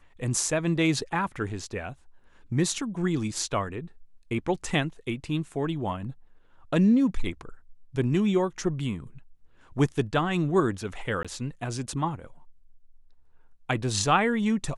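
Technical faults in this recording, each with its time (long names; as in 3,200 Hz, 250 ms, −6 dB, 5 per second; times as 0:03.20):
0:11.23–0:11.25: drop-out 16 ms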